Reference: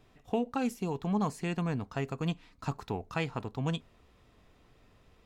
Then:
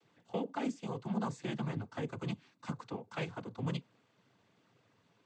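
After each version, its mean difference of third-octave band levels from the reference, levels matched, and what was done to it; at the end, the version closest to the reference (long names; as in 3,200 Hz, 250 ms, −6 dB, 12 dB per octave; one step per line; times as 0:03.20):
4.0 dB: cochlear-implant simulation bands 16
level −5 dB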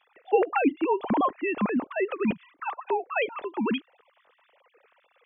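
12.0 dB: three sine waves on the formant tracks
level +6.5 dB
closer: first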